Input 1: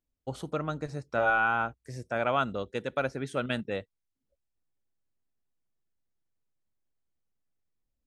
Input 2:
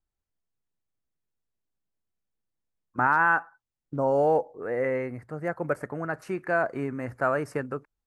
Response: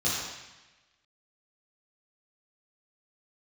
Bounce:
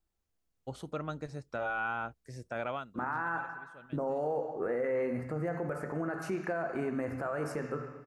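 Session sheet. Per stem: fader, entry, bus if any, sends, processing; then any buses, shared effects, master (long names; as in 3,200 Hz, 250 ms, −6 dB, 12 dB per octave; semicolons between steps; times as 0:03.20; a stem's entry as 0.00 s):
−5.0 dB, 0.40 s, no send, de-essing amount 100%; automatic ducking −19 dB, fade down 0.25 s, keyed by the second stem
+2.5 dB, 0.00 s, send −16 dB, downward compressor 3 to 1, threshold −32 dBFS, peak gain reduction 11 dB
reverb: on, RT60 1.1 s, pre-delay 3 ms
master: brickwall limiter −25 dBFS, peak gain reduction 10 dB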